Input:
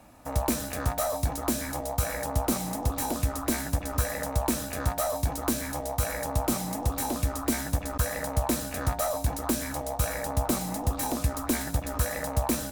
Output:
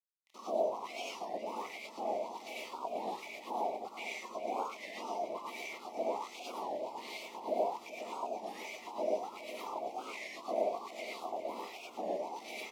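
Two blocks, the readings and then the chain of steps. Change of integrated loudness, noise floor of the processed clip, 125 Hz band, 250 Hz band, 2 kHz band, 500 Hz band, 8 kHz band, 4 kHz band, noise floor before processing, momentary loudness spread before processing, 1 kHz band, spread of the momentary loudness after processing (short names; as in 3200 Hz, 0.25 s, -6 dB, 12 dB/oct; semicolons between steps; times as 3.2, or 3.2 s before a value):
-10.0 dB, -52 dBFS, under -35 dB, -17.0 dB, -8.5 dB, -4.5 dB, -22.5 dB, -9.0 dB, -37 dBFS, 2 LU, -5.5 dB, 9 LU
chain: spectrum mirrored in octaves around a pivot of 1900 Hz; low shelf 220 Hz -9 dB; bit-crush 5-bit; wah 1.3 Hz 620–2300 Hz, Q 14; Butterworth band-stop 1600 Hz, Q 0.98; on a send: echo 0.41 s -13.5 dB; on the sum: non-linear reverb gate 0.13 s rising, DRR -4.5 dB; record warp 33 1/3 rpm, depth 160 cents; gain +8.5 dB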